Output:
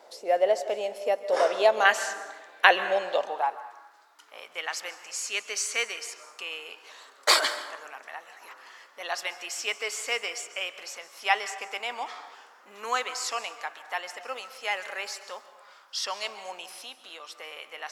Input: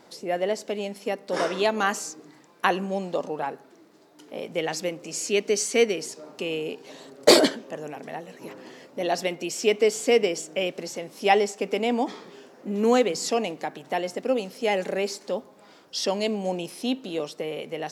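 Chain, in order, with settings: 1.85–3.24 band shelf 2500 Hz +10.5 dB; 16.79–17.3 compressor, threshold -30 dBFS, peak gain reduction 8.5 dB; plate-style reverb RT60 1.3 s, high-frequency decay 0.5×, pre-delay 0.12 s, DRR 12 dB; high-pass sweep 590 Hz -> 1200 Hz, 3.03–3.86; gain -2.5 dB

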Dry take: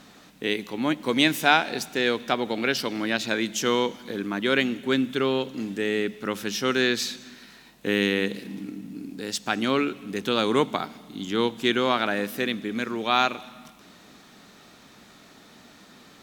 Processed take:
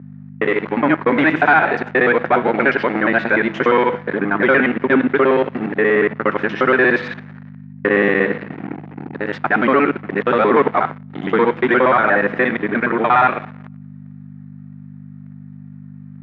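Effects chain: local time reversal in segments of 59 ms; low shelf 390 Hz -11 dB; de-hum 164.3 Hz, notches 29; sample leveller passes 5; hum 50 Hz, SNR 12 dB; Chebyshev band-pass 140–1900 Hz, order 3

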